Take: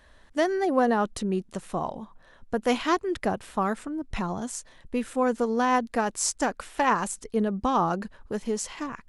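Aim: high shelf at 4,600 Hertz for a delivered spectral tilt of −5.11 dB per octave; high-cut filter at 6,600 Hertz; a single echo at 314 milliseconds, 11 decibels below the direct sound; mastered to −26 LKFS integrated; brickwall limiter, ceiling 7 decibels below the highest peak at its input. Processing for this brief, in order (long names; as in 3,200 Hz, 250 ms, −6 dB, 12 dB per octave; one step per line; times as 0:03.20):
low-pass filter 6,600 Hz
high-shelf EQ 4,600 Hz −3 dB
brickwall limiter −17 dBFS
single-tap delay 314 ms −11 dB
level +3 dB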